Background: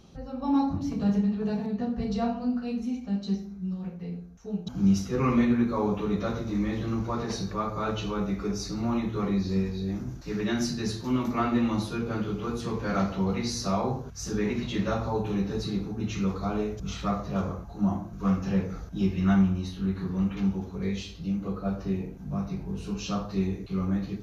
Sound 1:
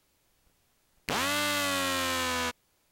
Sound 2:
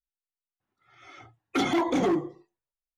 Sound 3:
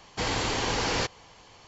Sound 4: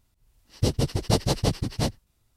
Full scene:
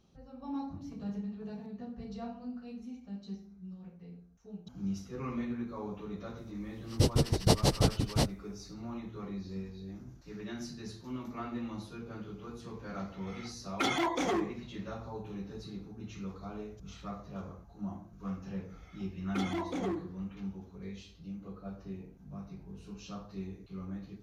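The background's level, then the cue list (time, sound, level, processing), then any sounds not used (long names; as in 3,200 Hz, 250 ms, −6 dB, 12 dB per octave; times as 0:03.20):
background −13.5 dB
0:06.37: mix in 4 −2.5 dB
0:12.25: mix in 2 −1 dB + low-shelf EQ 460 Hz −11 dB
0:17.80: mix in 2 −11 dB
not used: 1, 3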